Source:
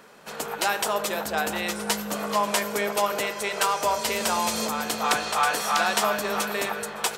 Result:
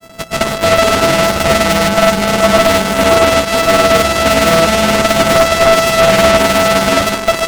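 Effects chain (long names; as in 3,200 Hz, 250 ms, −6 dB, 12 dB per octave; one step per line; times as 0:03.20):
samples sorted by size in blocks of 64 samples
low-shelf EQ 110 Hz +11 dB
in parallel at −4.5 dB: bit reduction 5 bits
on the sum: sine wavefolder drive 11 dB, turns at −2.5 dBFS
granular cloud 100 ms, pitch spread up and down by 0 semitones
wrong playback speed 25 fps video run at 24 fps
highs frequency-modulated by the lows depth 0.25 ms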